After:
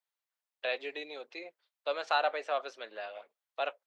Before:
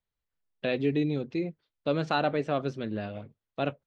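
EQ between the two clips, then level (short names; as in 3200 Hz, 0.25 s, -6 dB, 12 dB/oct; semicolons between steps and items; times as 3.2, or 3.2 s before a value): HPF 600 Hz 24 dB/oct; 0.0 dB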